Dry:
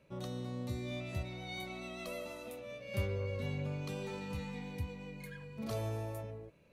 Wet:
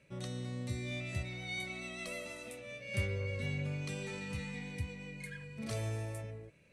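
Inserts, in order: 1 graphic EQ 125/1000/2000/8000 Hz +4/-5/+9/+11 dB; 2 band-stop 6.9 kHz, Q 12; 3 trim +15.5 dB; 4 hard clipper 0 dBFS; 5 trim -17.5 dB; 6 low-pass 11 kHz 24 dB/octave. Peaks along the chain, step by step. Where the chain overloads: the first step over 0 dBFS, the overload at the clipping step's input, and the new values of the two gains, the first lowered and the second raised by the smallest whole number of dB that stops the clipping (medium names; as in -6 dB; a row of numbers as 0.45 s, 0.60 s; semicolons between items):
-20.0 dBFS, -20.0 dBFS, -4.5 dBFS, -4.5 dBFS, -22.0 dBFS, -22.0 dBFS; nothing clips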